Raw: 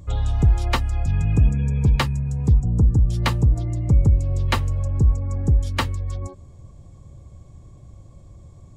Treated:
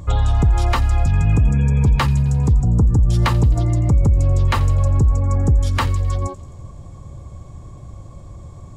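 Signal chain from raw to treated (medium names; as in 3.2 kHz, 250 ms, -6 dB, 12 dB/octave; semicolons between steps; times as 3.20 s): peaking EQ 1.1 kHz +6 dB 1.3 oct; peak limiter -16 dBFS, peak gain reduction 10.5 dB; feedback echo behind a high-pass 87 ms, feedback 64%, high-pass 3.3 kHz, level -15.5 dB; trim +7.5 dB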